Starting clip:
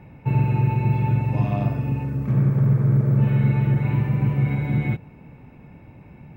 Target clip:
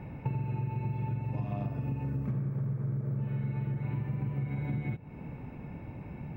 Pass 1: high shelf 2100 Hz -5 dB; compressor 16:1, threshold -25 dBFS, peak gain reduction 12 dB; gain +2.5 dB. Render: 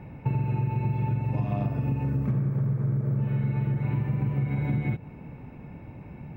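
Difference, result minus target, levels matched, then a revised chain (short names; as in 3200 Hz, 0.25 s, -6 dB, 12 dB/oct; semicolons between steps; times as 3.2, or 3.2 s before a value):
compressor: peak gain reduction -6.5 dB
high shelf 2100 Hz -5 dB; compressor 16:1, threshold -32 dBFS, peak gain reduction 18.5 dB; gain +2.5 dB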